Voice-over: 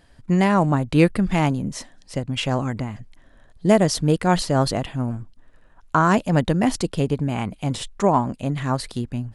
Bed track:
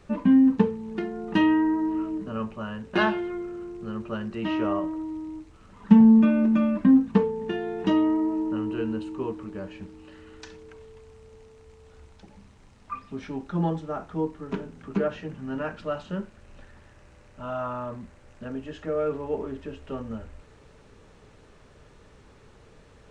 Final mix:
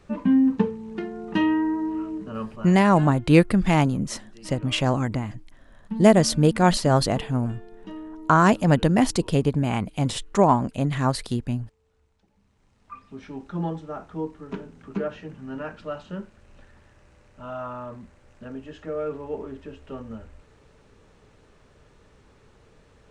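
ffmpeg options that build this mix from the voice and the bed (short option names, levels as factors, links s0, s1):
-filter_complex "[0:a]adelay=2350,volume=1.06[s0];[1:a]volume=4.47,afade=t=out:st=2.49:d=0.44:silence=0.16788,afade=t=in:st=12.34:d=1.11:silence=0.199526[s1];[s0][s1]amix=inputs=2:normalize=0"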